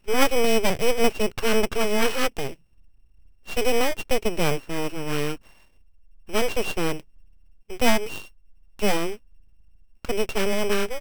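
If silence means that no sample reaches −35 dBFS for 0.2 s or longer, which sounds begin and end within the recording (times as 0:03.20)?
0:03.47–0:05.36
0:06.29–0:07.00
0:07.70–0:08.27
0:08.79–0:09.16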